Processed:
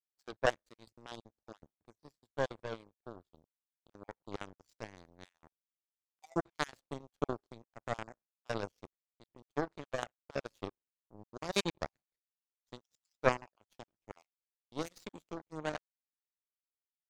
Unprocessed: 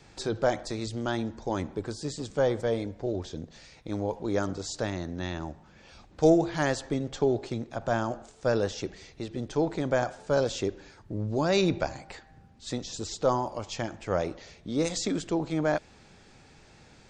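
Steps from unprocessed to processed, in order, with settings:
time-frequency cells dropped at random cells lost 31%
power curve on the samples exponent 3
level +4.5 dB

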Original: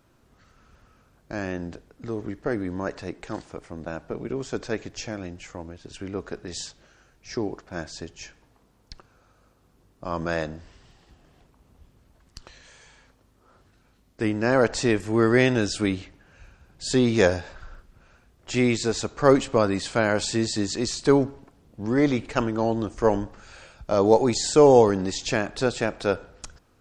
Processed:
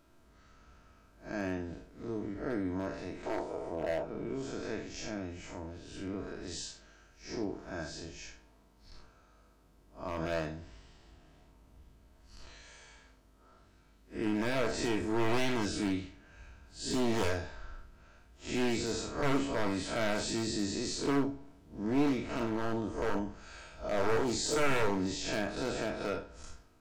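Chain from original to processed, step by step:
spectrum smeared in time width 125 ms
0:03.26–0:04.04: flat-topped bell 590 Hz +12.5 dB
in parallel at −1 dB: downward compressor 4 to 1, threshold −38 dBFS, peak gain reduction 21 dB
on the sum: wave folding −17.5 dBFS
on a send at −4.5 dB: convolution reverb, pre-delay 3 ms
on the sum: level −8 dB

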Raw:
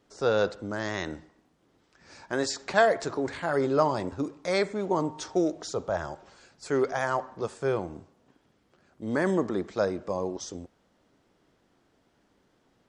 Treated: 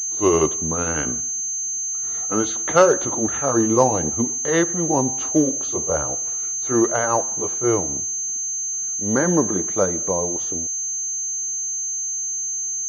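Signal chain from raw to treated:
pitch glide at a constant tempo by −4.5 semitones ending unshifted
switching amplifier with a slow clock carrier 6,300 Hz
level +8 dB

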